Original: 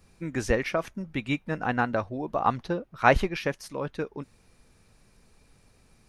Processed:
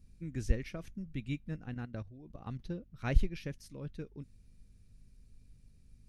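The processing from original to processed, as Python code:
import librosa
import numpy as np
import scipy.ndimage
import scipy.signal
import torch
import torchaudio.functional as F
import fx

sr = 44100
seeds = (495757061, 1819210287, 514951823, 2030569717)

y = fx.tone_stack(x, sr, knobs='10-0-1')
y = fx.add_hum(y, sr, base_hz=50, snr_db=29)
y = fx.level_steps(y, sr, step_db=12, at=(1.56, 2.6))
y = y * 10.0 ** (9.0 / 20.0)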